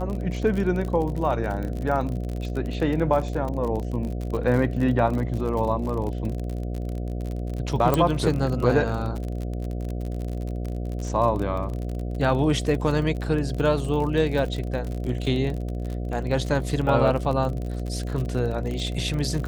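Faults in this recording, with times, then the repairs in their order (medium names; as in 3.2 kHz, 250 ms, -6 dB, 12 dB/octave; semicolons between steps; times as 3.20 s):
buzz 60 Hz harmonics 12 -29 dBFS
crackle 44 per s -29 dBFS
7.94 s: pop -8 dBFS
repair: de-click; de-hum 60 Hz, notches 12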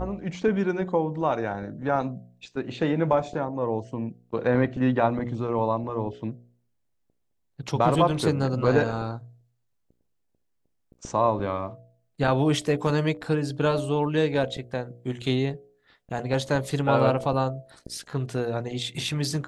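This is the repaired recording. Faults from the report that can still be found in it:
7.94 s: pop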